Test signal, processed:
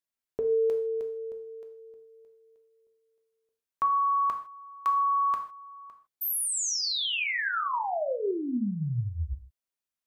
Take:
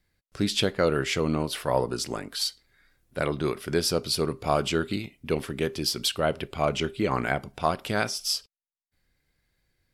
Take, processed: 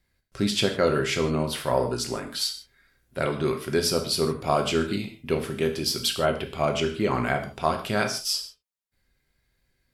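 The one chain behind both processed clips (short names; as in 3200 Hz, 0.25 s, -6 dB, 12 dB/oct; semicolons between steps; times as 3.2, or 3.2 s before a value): non-linear reverb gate 0.18 s falling, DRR 4 dB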